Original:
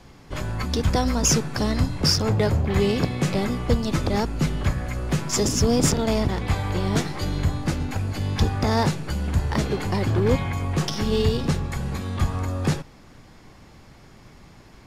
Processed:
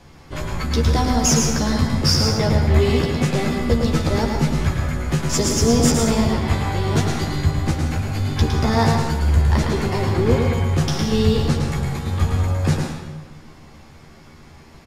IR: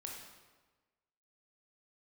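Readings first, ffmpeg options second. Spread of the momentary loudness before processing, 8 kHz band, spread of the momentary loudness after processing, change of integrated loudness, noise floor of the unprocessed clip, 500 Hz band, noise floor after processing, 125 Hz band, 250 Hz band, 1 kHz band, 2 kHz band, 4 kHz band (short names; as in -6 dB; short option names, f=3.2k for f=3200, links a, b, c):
7 LU, +3.5 dB, 7 LU, +4.0 dB, -49 dBFS, +3.5 dB, -44 dBFS, +4.5 dB, +4.0 dB, +4.0 dB, +4.0 dB, +3.5 dB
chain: -filter_complex "[0:a]asplit=2[a][b];[b]adelay=13,volume=-4dB[c];[a][c]amix=inputs=2:normalize=0,asplit=2[d][e];[1:a]atrim=start_sample=2205,adelay=110[f];[e][f]afir=irnorm=-1:irlink=0,volume=1dB[g];[d][g]amix=inputs=2:normalize=0"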